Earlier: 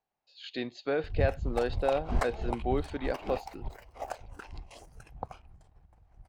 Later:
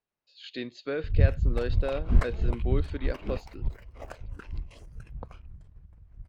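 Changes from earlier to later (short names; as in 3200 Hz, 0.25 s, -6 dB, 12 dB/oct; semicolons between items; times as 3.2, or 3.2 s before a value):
background: add tone controls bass +9 dB, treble -7 dB; master: add bell 780 Hz -13 dB 0.5 oct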